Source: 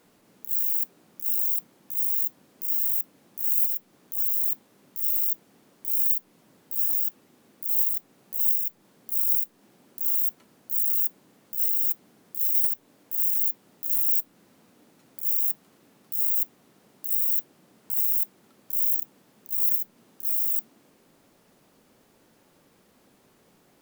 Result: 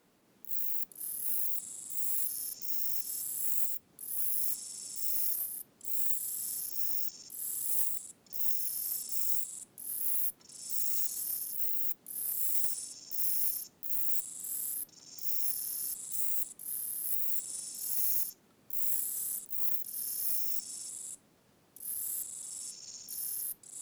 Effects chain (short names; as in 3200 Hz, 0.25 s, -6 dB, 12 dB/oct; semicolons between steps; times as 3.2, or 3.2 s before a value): added harmonics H 4 -31 dB, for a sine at -4.5 dBFS; echoes that change speed 0.286 s, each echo -6 st, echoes 3, each echo -6 dB; gain -7 dB